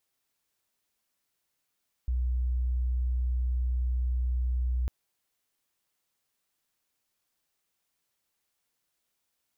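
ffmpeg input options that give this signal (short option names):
-f lavfi -i "sine=f=61.9:d=2.8:r=44100,volume=-6.94dB"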